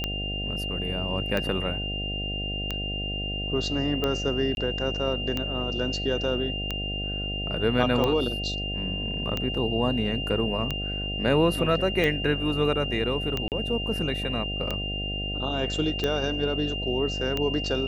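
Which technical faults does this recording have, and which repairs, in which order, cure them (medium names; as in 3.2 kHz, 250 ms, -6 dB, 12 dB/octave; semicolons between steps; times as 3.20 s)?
buzz 50 Hz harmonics 15 -33 dBFS
tick 45 rpm -13 dBFS
whine 2.8 kHz -31 dBFS
4.55–4.57 s: dropout 21 ms
13.48–13.52 s: dropout 38 ms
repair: de-click; de-hum 50 Hz, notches 15; band-stop 2.8 kHz, Q 30; interpolate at 4.55 s, 21 ms; interpolate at 13.48 s, 38 ms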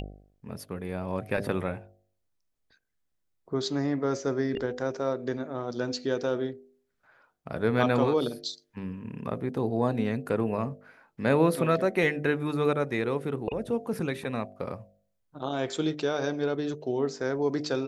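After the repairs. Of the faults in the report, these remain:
nothing left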